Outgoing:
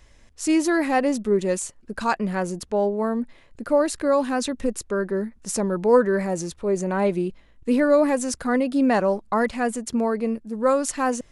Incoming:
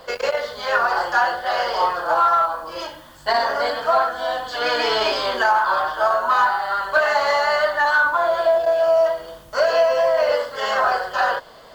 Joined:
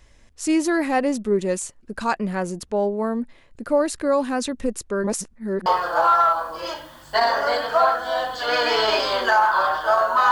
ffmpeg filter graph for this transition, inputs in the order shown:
ffmpeg -i cue0.wav -i cue1.wav -filter_complex "[0:a]apad=whole_dur=10.31,atrim=end=10.31,asplit=2[link_01][link_02];[link_01]atrim=end=5.042[link_03];[link_02]atrim=start=5.038:end=5.662,asetpts=PTS-STARTPTS,areverse[link_04];[1:a]atrim=start=1.788:end=6.44[link_05];[link_03][link_04]acrossfade=duration=0.004:curve1=hsin:curve2=hsin[link_06];[link_06][link_05]acrossfade=duration=0.004:curve1=hsin:curve2=hsin" out.wav

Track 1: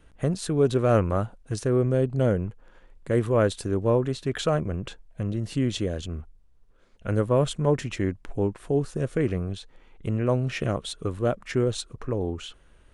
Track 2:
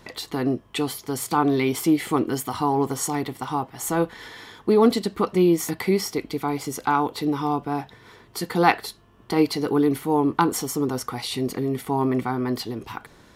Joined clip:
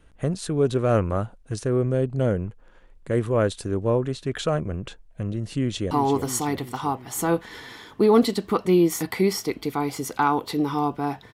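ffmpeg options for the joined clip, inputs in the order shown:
ffmpeg -i cue0.wav -i cue1.wav -filter_complex "[0:a]apad=whole_dur=11.33,atrim=end=11.33,atrim=end=5.912[link_01];[1:a]atrim=start=2.588:end=8.01[link_02];[link_01][link_02]acrossfade=duration=0.004:curve1=hsin:curve2=hsin,asplit=2[link_03][link_04];[link_04]afade=type=in:start_time=5.57:duration=0.01,afade=type=out:start_time=5.91:duration=0.01,aecho=0:1:340|680|1020|1360|1700|2040|2380|2720:0.398107|0.238864|0.143319|0.0859911|0.0515947|0.0309568|0.0185741|0.0111445[link_05];[link_03][link_05]amix=inputs=2:normalize=0" out.wav

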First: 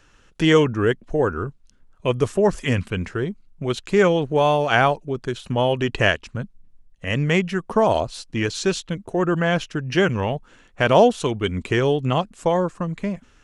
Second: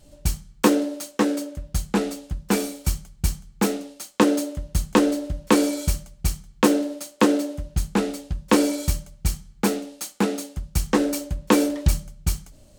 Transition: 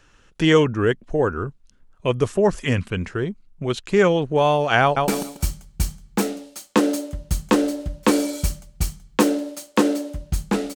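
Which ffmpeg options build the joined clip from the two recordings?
ffmpeg -i cue0.wav -i cue1.wav -filter_complex "[0:a]apad=whole_dur=10.75,atrim=end=10.75,atrim=end=5.082[link_01];[1:a]atrim=start=2.518:end=8.19[link_02];[link_01][link_02]acrossfade=duration=0.004:curve1=hsin:curve2=hsin,asplit=2[link_03][link_04];[link_04]afade=type=in:start_time=4.82:duration=0.01,afade=type=out:start_time=5.08:duration=0.01,aecho=0:1:140|280|420|560:0.707946|0.176986|0.0442466|0.0110617[link_05];[link_03][link_05]amix=inputs=2:normalize=0" out.wav

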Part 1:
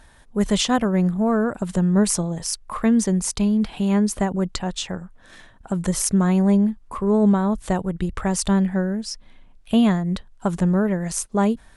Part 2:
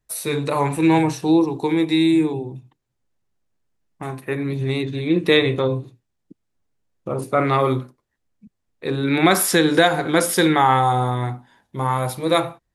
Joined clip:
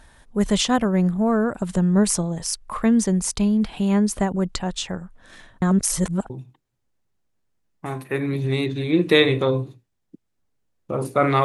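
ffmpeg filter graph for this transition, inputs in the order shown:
ffmpeg -i cue0.wav -i cue1.wav -filter_complex "[0:a]apad=whole_dur=11.44,atrim=end=11.44,asplit=2[link_01][link_02];[link_01]atrim=end=5.622[link_03];[link_02]atrim=start=5.618:end=6.302,asetpts=PTS-STARTPTS,areverse[link_04];[1:a]atrim=start=2.468:end=7.61[link_05];[link_03][link_04]acrossfade=duration=0.004:curve1=hsin:curve2=hsin[link_06];[link_06][link_05]acrossfade=duration=0.004:curve1=hsin:curve2=hsin" out.wav

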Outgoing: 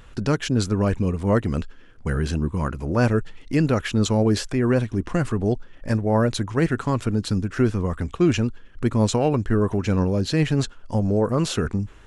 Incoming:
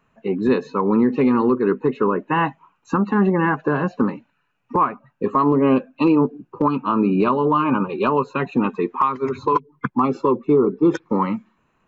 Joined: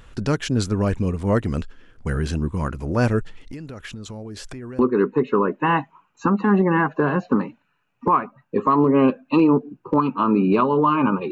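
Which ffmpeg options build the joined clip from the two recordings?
ffmpeg -i cue0.wav -i cue1.wav -filter_complex "[0:a]asettb=1/sr,asplit=3[link_01][link_02][link_03];[link_01]atrim=end=3.364[link_04];[link_02]atrim=start=3.36:end=4.79,asetpts=PTS-STARTPTS,afade=type=in:duration=0.004:curve=qsin,afade=type=out:start_time=1.426:duration=0.004:curve=qsin,acompressor=threshold=-31dB:ratio=12:attack=3.2:release=140:knee=1:detection=peak[link_05];[link_03]atrim=start=4.786[link_06];[link_04][link_05]acrossfade=duration=0.004:curve1=hsin:curve2=qsin[link_07];[link_07][link_06]acrossfade=duration=0.004:curve1=qsin:curve2=hsin,apad=whole_dur=11.31,atrim=end=11.31,atrim=end=4.792[link_08];[1:a]atrim=start=1.468:end=7.99[link_09];[link_08][link_09]acrossfade=duration=0.004:curve1=hsin:curve2=hsin" out.wav

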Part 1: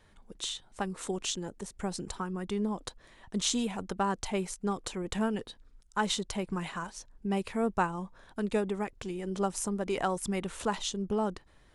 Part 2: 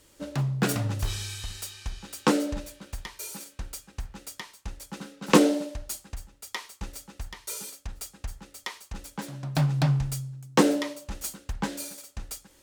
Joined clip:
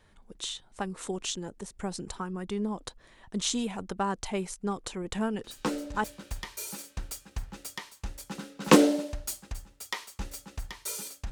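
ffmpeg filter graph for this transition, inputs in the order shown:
ffmpeg -i cue0.wav -i cue1.wav -filter_complex "[1:a]asplit=2[link_01][link_02];[0:a]apad=whole_dur=11.31,atrim=end=11.31,atrim=end=6.042[link_03];[link_02]atrim=start=2.658:end=7.93[link_04];[link_01]atrim=start=2.06:end=2.66,asetpts=PTS-STARTPTS,volume=-8.5dB,afade=type=in:duration=0.004:curve=hsin,afade=type=out:start_time=0.596:duration=0.004:curve=hsin,adelay=5440[link_05];[link_03][link_04]acrossfade=duration=0.004:curve1=hsin:curve2=hsin[link_06];[link_06][link_05]amix=inputs=2:normalize=0" out.wav

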